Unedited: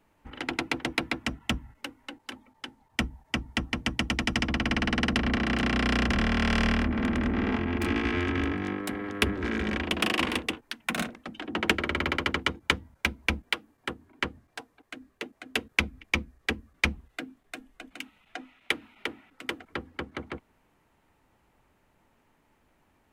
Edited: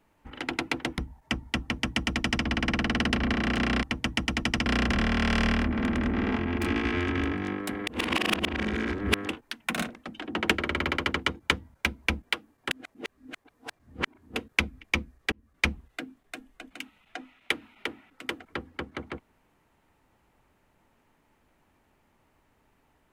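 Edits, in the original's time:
0.98–3.01 s: delete
3.65–4.48 s: copy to 5.86 s
9.07–10.49 s: reverse
13.91–15.56 s: reverse
16.52–16.84 s: fade in linear

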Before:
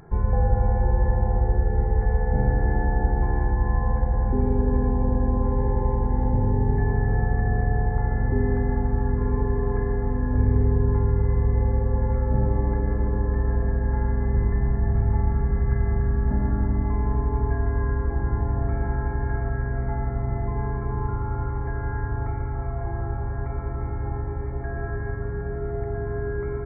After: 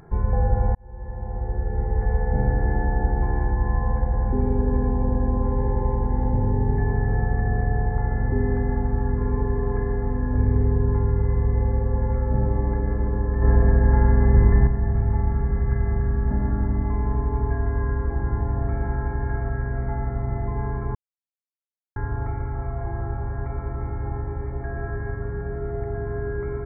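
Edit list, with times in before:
0.75–2.14 s: fade in
13.42–14.67 s: gain +6.5 dB
20.95–21.96 s: mute

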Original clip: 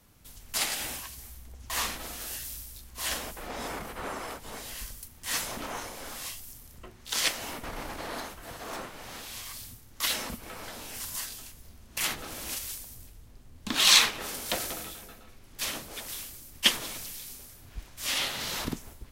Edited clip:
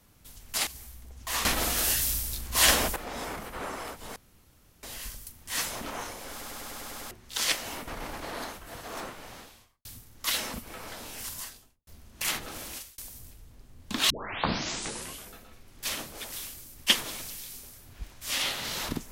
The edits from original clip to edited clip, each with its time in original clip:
0.67–1.10 s: delete
1.88–3.39 s: gain +11.5 dB
4.59 s: insert room tone 0.67 s
6.07 s: stutter in place 0.10 s, 8 plays
8.92–9.61 s: studio fade out
11.03–11.63 s: studio fade out
12.36–12.74 s: fade out
13.86 s: tape start 1.22 s

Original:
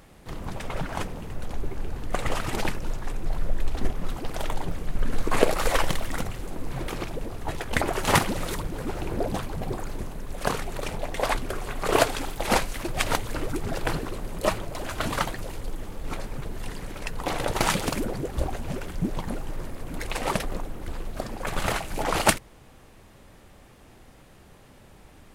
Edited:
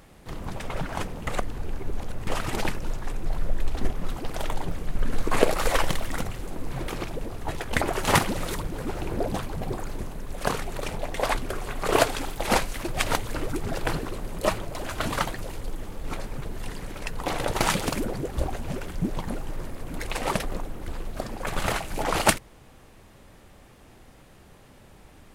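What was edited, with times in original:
1.27–2.27 s: reverse

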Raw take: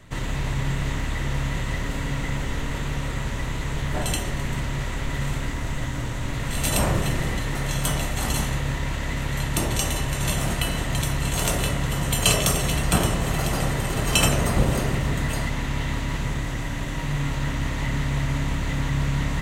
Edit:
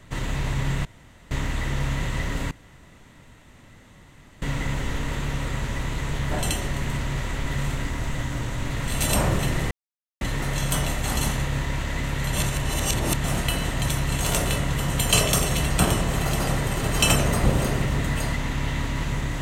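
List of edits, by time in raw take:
0.85 s: insert room tone 0.46 s
2.05 s: insert room tone 1.91 s
7.34 s: insert silence 0.50 s
9.46–10.37 s: reverse

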